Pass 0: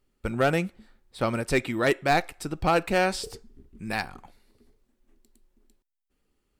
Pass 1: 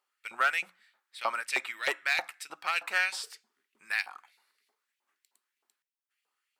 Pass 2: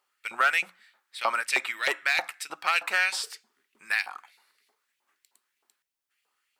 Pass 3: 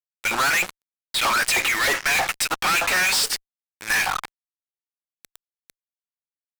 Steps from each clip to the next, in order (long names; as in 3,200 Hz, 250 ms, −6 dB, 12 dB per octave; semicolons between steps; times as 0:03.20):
mains-hum notches 60/120/180/240/300 Hz; auto-filter high-pass saw up 3.2 Hz 820–2,700 Hz; level −3.5 dB
brickwall limiter −18.5 dBFS, peak gain reduction 5 dB; level +6 dB
fuzz pedal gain 47 dB, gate −47 dBFS; level −5.5 dB